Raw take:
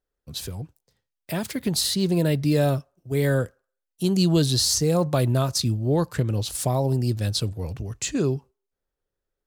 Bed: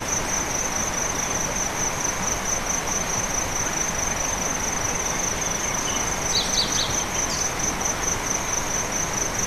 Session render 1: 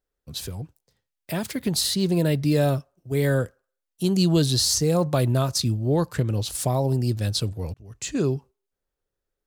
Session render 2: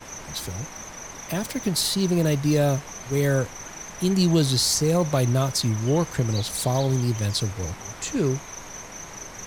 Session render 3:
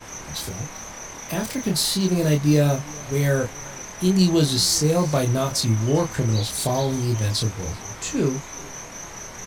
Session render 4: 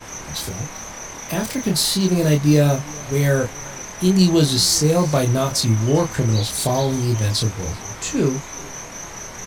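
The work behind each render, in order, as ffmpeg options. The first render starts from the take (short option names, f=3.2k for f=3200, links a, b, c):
-filter_complex "[0:a]asplit=2[a][b];[a]atrim=end=7.74,asetpts=PTS-STARTPTS,afade=t=out:st=7.736:d=0.004:c=hsin[c];[b]atrim=start=7.74,asetpts=PTS-STARTPTS,afade=t=in:d=0.46[d];[c][d]concat=n=2:v=0:a=1"
-filter_complex "[1:a]volume=-13.5dB[a];[0:a][a]amix=inputs=2:normalize=0"
-filter_complex "[0:a]asplit=2[a][b];[b]adelay=27,volume=-3dB[c];[a][c]amix=inputs=2:normalize=0,aecho=1:1:390:0.0708"
-af "volume=3dB"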